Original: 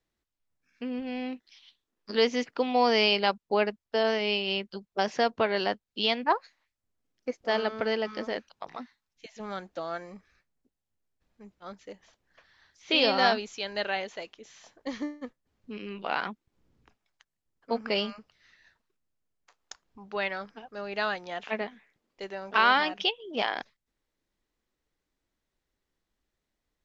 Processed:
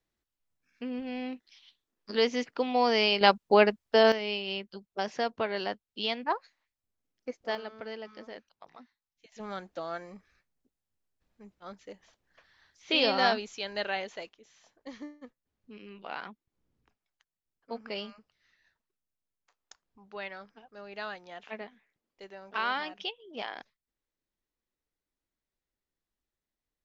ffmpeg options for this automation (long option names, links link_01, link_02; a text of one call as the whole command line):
ffmpeg -i in.wav -af "asetnsamples=nb_out_samples=441:pad=0,asendcmd='3.21 volume volume 5dB;4.12 volume volume -5dB;7.55 volume volume -12dB;9.32 volume volume -2dB;14.29 volume volume -9dB',volume=-2dB" out.wav